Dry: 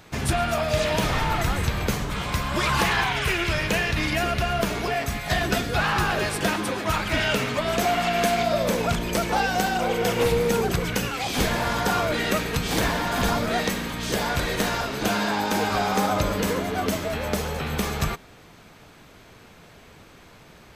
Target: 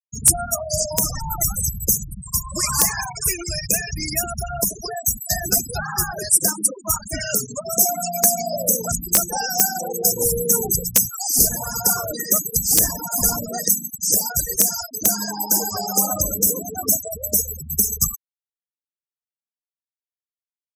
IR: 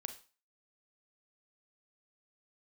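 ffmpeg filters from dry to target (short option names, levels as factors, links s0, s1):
-af "aexciter=amount=7.5:drive=8.7:freq=5100,afftfilt=real='re*gte(hypot(re,im),0.2)':imag='im*gte(hypot(re,im),0.2)':win_size=1024:overlap=0.75,aeval=exprs='(mod(0.891*val(0)+1,2)-1)/0.891':c=same,volume=0.794"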